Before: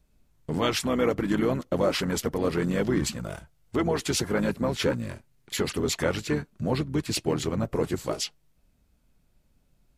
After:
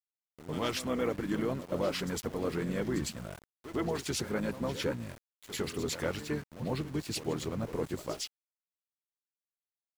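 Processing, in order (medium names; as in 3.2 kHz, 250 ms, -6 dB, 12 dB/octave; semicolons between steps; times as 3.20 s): reverse echo 105 ms -12.5 dB; small samples zeroed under -38.5 dBFS; trim -7.5 dB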